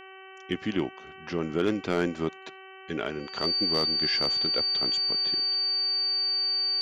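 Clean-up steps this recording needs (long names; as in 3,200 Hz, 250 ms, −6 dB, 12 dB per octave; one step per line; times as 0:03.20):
clipped peaks rebuilt −16.5 dBFS
hum removal 381.3 Hz, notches 8
notch filter 4,600 Hz, Q 30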